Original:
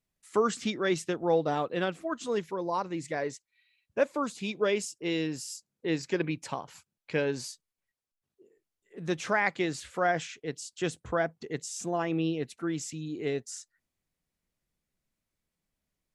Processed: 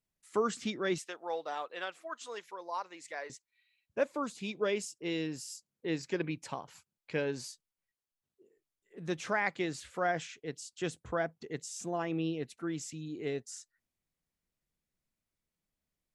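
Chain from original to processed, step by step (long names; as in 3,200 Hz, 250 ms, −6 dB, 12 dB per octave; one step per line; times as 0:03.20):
0:00.98–0:03.30: high-pass filter 740 Hz 12 dB per octave
level −4.5 dB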